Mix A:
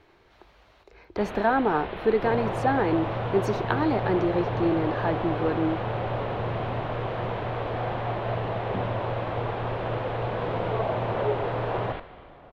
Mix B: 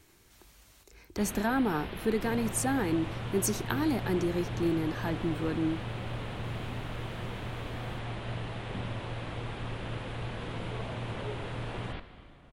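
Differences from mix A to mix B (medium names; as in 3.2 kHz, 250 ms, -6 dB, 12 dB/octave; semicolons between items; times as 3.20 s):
second sound -6.0 dB; master: remove FFT filter 250 Hz 0 dB, 420 Hz +8 dB, 670 Hz +11 dB, 4.1 kHz -1 dB, 8.1 kHz -22 dB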